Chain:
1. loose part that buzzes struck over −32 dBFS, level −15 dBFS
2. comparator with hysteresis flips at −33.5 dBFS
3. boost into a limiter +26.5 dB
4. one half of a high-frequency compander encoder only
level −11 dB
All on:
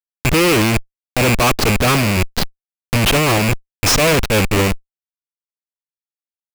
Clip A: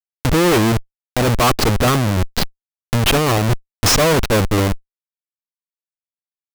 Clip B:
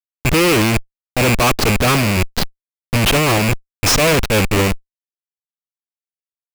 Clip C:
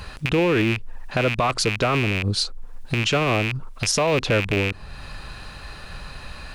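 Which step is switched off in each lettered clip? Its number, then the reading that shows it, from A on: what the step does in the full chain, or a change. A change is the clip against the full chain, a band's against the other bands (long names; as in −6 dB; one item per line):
1, 2 kHz band −4.0 dB
4, change in crest factor −10.5 dB
2, 8 kHz band −2.5 dB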